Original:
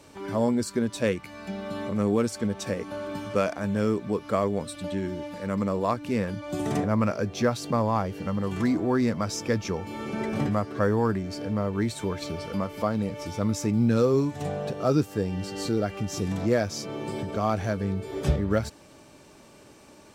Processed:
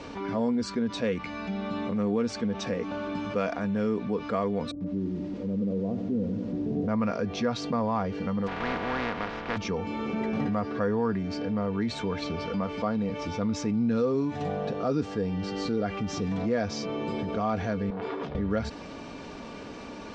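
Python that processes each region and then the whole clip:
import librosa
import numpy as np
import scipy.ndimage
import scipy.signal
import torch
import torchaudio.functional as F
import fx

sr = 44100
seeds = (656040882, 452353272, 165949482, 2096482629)

y = fx.chain(x, sr, fx.cheby2_lowpass(hz=2800.0, order=4, stop_db=80),
    fx.echo_crushed(ms=94, feedback_pct=80, bits=8, wet_db=-11.0), at=(4.71, 6.88))
y = fx.spec_flatten(y, sr, power=0.16, at=(8.46, 9.56), fade=0.02)
y = fx.lowpass(y, sr, hz=1700.0, slope=12, at=(8.46, 9.56), fade=0.02)
y = fx.chain(y, sr, fx.bandpass_edges(low_hz=150.0, high_hz=5100.0),
    fx.over_compress(threshold_db=-35.0, ratio=-1.0),
    fx.transformer_sat(knee_hz=1100.0), at=(17.9, 18.35))
y = scipy.signal.sosfilt(scipy.signal.bessel(6, 3800.0, 'lowpass', norm='mag', fs=sr, output='sos'), y)
y = y + 0.44 * np.pad(y, (int(4.2 * sr / 1000.0), 0))[:len(y)]
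y = fx.env_flatten(y, sr, amount_pct=50)
y = y * librosa.db_to_amplitude(-7.0)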